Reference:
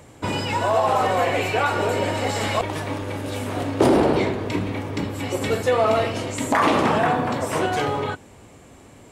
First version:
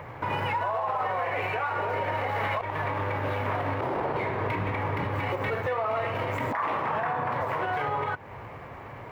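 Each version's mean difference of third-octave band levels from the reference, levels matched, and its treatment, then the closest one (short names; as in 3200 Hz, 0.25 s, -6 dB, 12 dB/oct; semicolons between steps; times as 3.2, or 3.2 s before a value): 7.5 dB: median filter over 9 samples; ten-band EQ 125 Hz +8 dB, 250 Hz -6 dB, 500 Hz +4 dB, 1000 Hz +11 dB, 2000 Hz +10 dB, 8000 Hz -11 dB; compressor 6:1, threshold -24 dBFS, peak gain reduction 18.5 dB; limiter -20 dBFS, peak gain reduction 11.5 dB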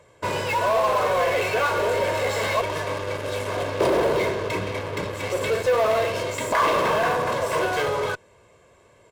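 5.0 dB: LPF 3700 Hz 6 dB/oct; low shelf 210 Hz -11 dB; comb 1.9 ms, depth 69%; in parallel at -7.5 dB: fuzz box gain 31 dB, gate -35 dBFS; on the sum: gain -6 dB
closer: second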